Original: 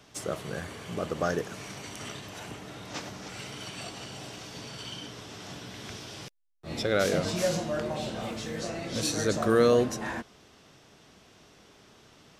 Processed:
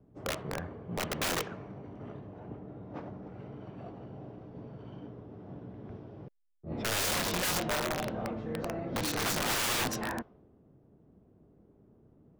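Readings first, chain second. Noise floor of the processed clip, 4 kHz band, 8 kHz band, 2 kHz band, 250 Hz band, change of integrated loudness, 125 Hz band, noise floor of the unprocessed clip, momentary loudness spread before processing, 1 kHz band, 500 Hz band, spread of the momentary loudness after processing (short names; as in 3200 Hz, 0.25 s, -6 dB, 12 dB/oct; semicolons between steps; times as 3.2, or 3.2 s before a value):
-63 dBFS, +0.5 dB, +1.0 dB, 0.0 dB, -5.0 dB, -2.0 dB, -3.5 dB, -57 dBFS, 16 LU, -1.0 dB, -9.5 dB, 18 LU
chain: low-pass opened by the level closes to 330 Hz, open at -21.5 dBFS; wrapped overs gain 25.5 dB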